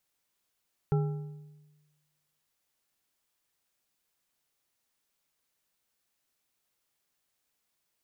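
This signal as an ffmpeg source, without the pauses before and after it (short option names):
-f lavfi -i "aevalsrc='0.0794*pow(10,-3*t/1.24)*sin(2*PI*150*t)+0.0355*pow(10,-3*t/0.915)*sin(2*PI*413.6*t)+0.0158*pow(10,-3*t/0.747)*sin(2*PI*810.6*t)+0.00708*pow(10,-3*t/0.643)*sin(2*PI*1340*t)':d=1.55:s=44100"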